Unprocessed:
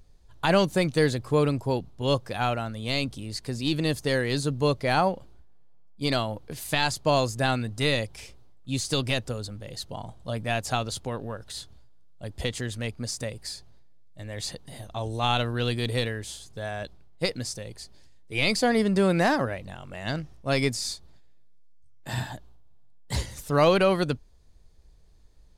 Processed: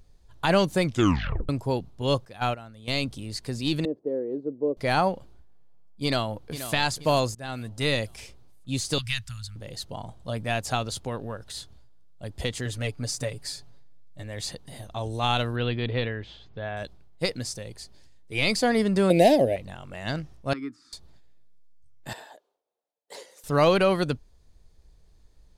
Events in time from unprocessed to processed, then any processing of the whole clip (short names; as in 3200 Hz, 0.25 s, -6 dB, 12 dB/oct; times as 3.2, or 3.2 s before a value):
0.85 tape stop 0.64 s
2.25–2.88 gate -27 dBFS, range -12 dB
3.85–4.77 Butterworth band-pass 380 Hz, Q 1.4
6.04–6.72 echo throw 0.48 s, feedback 40%, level -12 dB
7.35–7.93 fade in, from -20 dB
8.98–9.56 Chebyshev band-stop 100–1800 Hz
12.65–14.23 comb 7 ms
15.56–16.77 LPF 3400 Hz 24 dB/oct
19.1–19.56 EQ curve 150 Hz 0 dB, 660 Hz +10 dB, 1300 Hz -27 dB, 2100 Hz +1 dB, 3200 Hz +6 dB, 5600 Hz 0 dB, 13000 Hz +10 dB
20.53–20.93 double band-pass 620 Hz, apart 2.1 oct
22.13–23.44 ladder high-pass 420 Hz, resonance 60%